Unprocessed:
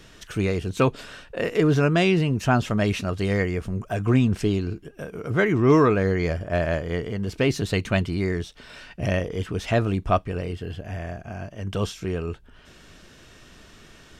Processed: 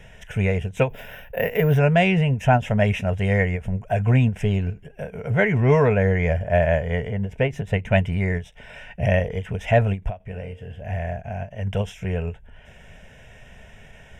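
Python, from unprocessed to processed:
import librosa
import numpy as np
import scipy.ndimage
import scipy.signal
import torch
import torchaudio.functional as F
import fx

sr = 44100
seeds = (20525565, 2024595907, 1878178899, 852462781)

y = fx.lowpass(x, sr, hz=3200.0, slope=6)
y = fx.notch(y, sr, hz=1600.0, q=26.0)
y = fx.high_shelf(y, sr, hz=2300.0, db=-7.5, at=(7.1, 7.91))
y = fx.fixed_phaser(y, sr, hz=1200.0, stages=6)
y = fx.resample_bad(y, sr, factor=3, down='filtered', up='hold', at=(0.89, 1.78))
y = fx.comb_fb(y, sr, f0_hz=65.0, decay_s=0.51, harmonics='all', damping=0.0, mix_pct=70, at=(10.19, 10.81))
y = fx.end_taper(y, sr, db_per_s=250.0)
y = y * librosa.db_to_amplitude(6.5)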